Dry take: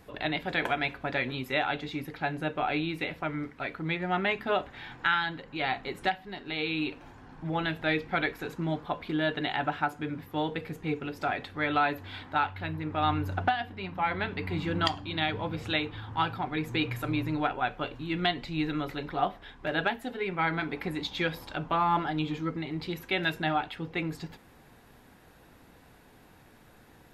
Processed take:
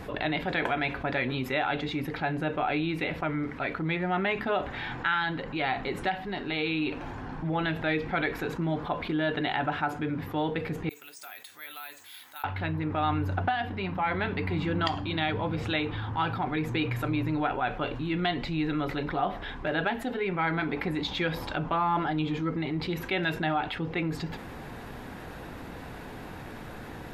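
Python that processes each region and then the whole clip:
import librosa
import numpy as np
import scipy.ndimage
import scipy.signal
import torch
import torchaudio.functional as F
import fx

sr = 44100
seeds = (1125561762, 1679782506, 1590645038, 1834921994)

y = fx.chain(x, sr, fx.bandpass_q(hz=6900.0, q=6.6),
    fx.resample_bad(factor=3, down='filtered', up='zero_stuff'), at=(10.89, 12.44))
y = fx.high_shelf(y, sr, hz=4800.0, db=-10.0)
y = fx.env_flatten(y, sr, amount_pct=50)
y = F.gain(torch.from_numpy(y), -2.0).numpy()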